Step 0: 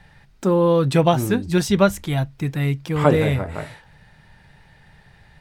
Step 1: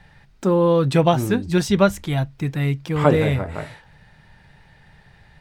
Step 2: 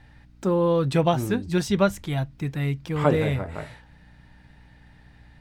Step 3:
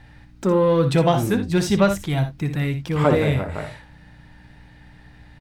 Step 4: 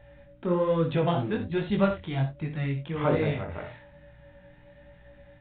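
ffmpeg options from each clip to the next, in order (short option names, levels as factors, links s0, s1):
-af "equalizer=f=12000:w=0.77:g=-4"
-af "aeval=exprs='val(0)+0.00447*(sin(2*PI*60*n/s)+sin(2*PI*2*60*n/s)/2+sin(2*PI*3*60*n/s)/3+sin(2*PI*4*60*n/s)/4+sin(2*PI*5*60*n/s)/5)':c=same,volume=0.596"
-filter_complex "[0:a]asplit=2[s0][s1];[s1]asoftclip=type=tanh:threshold=0.106,volume=0.708[s2];[s0][s2]amix=inputs=2:normalize=0,aecho=1:1:60|80:0.335|0.158"
-af "aeval=exprs='val(0)+0.00562*sin(2*PI*570*n/s)':c=same,aresample=8000,aresample=44100,flanger=delay=18.5:depth=5.2:speed=1.2,volume=0.596"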